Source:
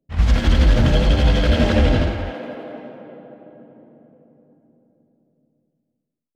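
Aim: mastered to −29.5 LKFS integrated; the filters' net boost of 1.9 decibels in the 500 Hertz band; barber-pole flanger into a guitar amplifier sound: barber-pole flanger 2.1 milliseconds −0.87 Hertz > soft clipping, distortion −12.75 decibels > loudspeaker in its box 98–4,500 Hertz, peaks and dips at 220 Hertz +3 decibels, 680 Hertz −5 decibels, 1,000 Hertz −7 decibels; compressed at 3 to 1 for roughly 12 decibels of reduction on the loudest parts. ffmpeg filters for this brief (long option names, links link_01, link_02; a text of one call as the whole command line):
ffmpeg -i in.wav -filter_complex "[0:a]equalizer=frequency=500:width_type=o:gain=4,acompressor=threshold=-27dB:ratio=3,asplit=2[link_01][link_02];[link_02]adelay=2.1,afreqshift=-0.87[link_03];[link_01][link_03]amix=inputs=2:normalize=1,asoftclip=threshold=-27.5dB,highpass=98,equalizer=frequency=220:width_type=q:width=4:gain=3,equalizer=frequency=680:width_type=q:width=4:gain=-5,equalizer=frequency=1000:width_type=q:width=4:gain=-7,lowpass=frequency=4500:width=0.5412,lowpass=frequency=4500:width=1.3066,volume=8.5dB" out.wav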